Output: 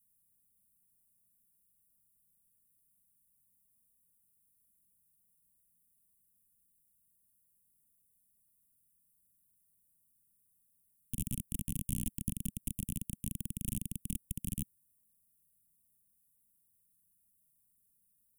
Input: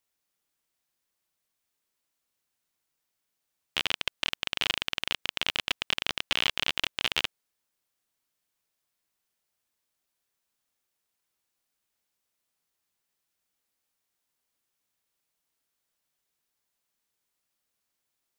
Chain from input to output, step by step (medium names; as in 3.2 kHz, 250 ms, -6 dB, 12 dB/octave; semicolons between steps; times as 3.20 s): reverse the whole clip; elliptic band-stop 210–9600 Hz, stop band 40 dB; trim +11 dB